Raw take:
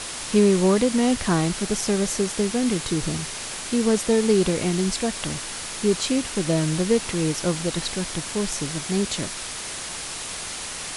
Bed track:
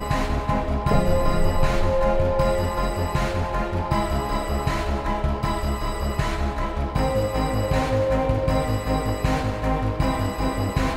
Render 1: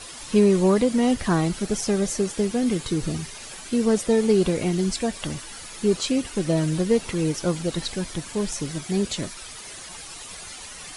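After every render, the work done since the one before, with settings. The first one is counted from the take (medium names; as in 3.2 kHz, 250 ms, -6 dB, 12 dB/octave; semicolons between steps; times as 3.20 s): noise reduction 11 dB, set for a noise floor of -33 dBFS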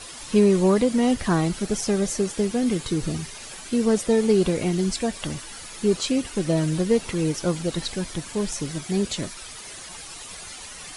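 no audible change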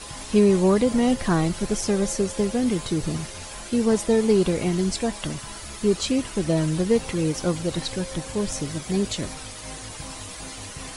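add bed track -17.5 dB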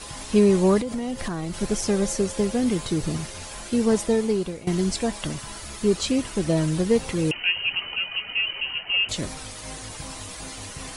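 0.80–1.54 s: compression, threshold -25 dBFS; 4.00–4.67 s: fade out, to -17 dB; 7.31–9.09 s: frequency inversion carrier 3 kHz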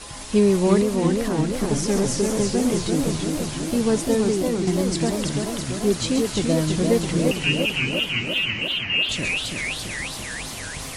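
feedback echo behind a high-pass 132 ms, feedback 58%, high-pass 3.9 kHz, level -6 dB; modulated delay 337 ms, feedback 68%, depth 204 cents, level -4 dB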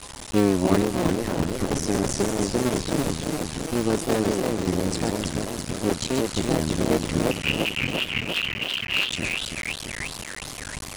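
cycle switcher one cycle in 2, muted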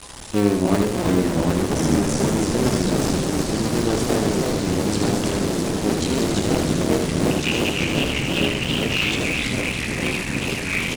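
delay 78 ms -5 dB; ever faster or slower copies 667 ms, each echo -2 st, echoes 3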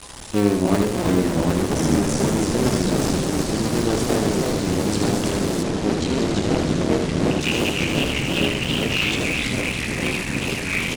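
5.63–7.41 s: distance through air 56 m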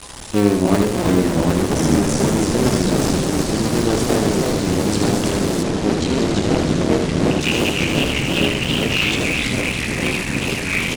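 trim +3 dB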